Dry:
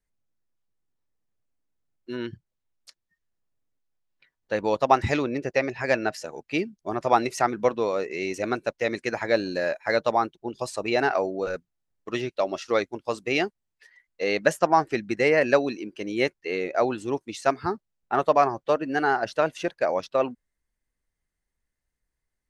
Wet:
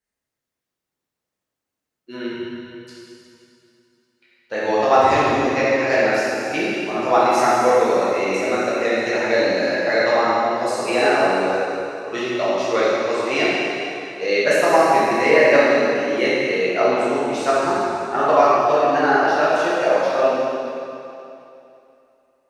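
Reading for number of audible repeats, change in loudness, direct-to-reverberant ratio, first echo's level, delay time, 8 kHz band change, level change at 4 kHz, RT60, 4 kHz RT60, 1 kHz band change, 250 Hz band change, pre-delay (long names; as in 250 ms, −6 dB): no echo audible, +7.5 dB, −9.5 dB, no echo audible, no echo audible, +8.0 dB, +8.5 dB, 2.8 s, 2.6 s, +7.5 dB, +6.0 dB, 5 ms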